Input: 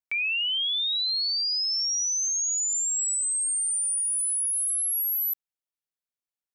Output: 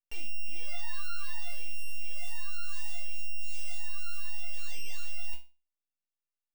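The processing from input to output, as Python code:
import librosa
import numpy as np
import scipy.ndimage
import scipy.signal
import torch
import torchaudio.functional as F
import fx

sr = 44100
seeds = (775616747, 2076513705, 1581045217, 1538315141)

y = np.r_[np.sort(x[:len(x) // 16 * 16].reshape(-1, 16), axis=1).ravel(), x[len(x) // 16 * 16:]]
y = np.maximum(y, 0.0)
y = fx.resonator_bank(y, sr, root=58, chord='major', decay_s=0.3)
y = F.gain(torch.from_numpy(y), 11.0).numpy()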